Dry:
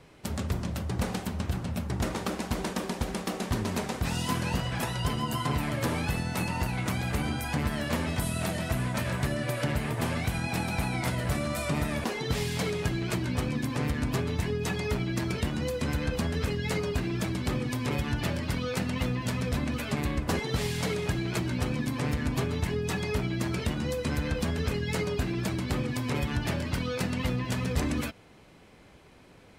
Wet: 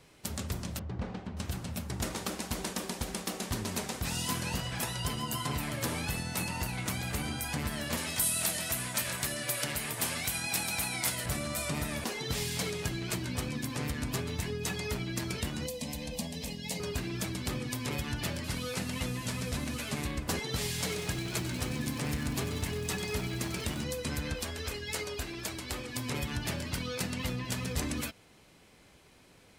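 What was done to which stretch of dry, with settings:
0:00.79–0:01.37: head-to-tape spacing loss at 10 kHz 35 dB
0:07.97–0:11.26: spectral tilt +2 dB per octave
0:15.66–0:16.80: phaser with its sweep stopped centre 370 Hz, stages 6
0:18.44–0:20.07: linear delta modulator 64 kbit/s, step −40 dBFS
0:20.59–0:23.84: feedback echo at a low word length 95 ms, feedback 80%, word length 9 bits, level −12 dB
0:24.35–0:25.95: parametric band 160 Hz −14 dB 1.1 octaves
whole clip: high-shelf EQ 3,400 Hz +11 dB; level −6 dB

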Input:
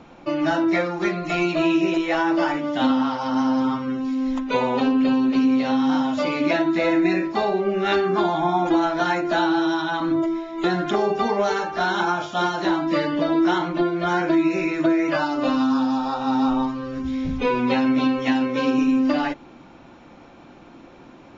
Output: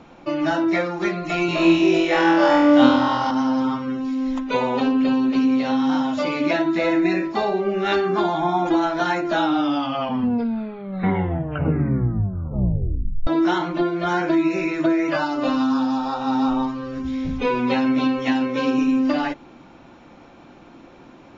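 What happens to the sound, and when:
0:01.46–0:03.31: flutter between parallel walls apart 4.1 metres, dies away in 0.93 s
0:09.25: tape stop 4.02 s

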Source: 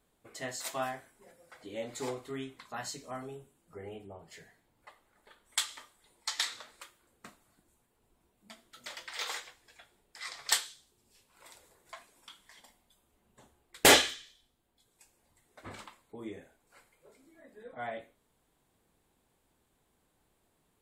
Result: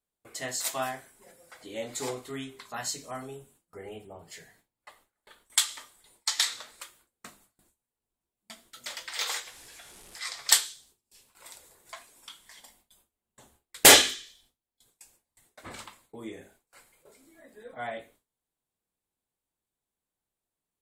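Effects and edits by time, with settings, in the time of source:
0:09.46–0:10.19: linear delta modulator 64 kbit/s, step −50.5 dBFS
whole clip: high-shelf EQ 4,100 Hz +8 dB; mains-hum notches 50/100/150/200/250/300/350/400/450 Hz; noise gate with hold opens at −53 dBFS; level +2.5 dB

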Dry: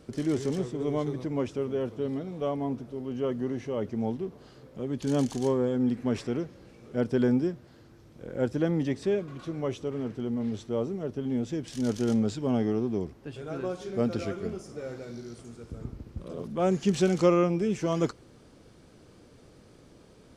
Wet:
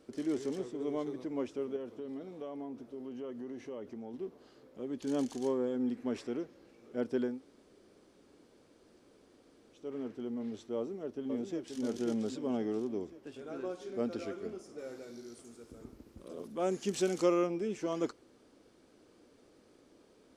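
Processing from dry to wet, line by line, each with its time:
0:01.76–0:04.14: downward compressor, threshold −31 dBFS
0:07.30–0:09.82: fill with room tone, crossfade 0.24 s
0:10.76–0:11.82: delay throw 530 ms, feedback 55%, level −6 dB
0:14.78–0:17.47: high-shelf EQ 7,300 Hz +12 dB
whole clip: low shelf with overshoot 200 Hz −9 dB, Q 1.5; level −7.5 dB

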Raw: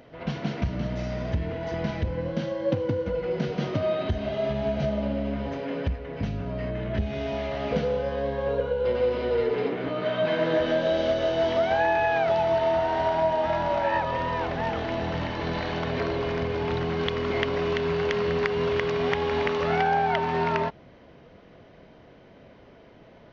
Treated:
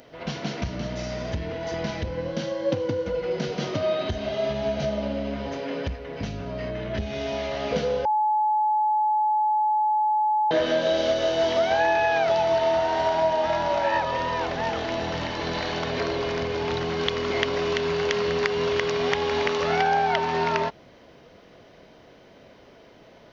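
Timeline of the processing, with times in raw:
0:08.05–0:10.51: beep over 855 Hz −20.5 dBFS
whole clip: bass and treble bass −5 dB, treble +11 dB; level +1.5 dB

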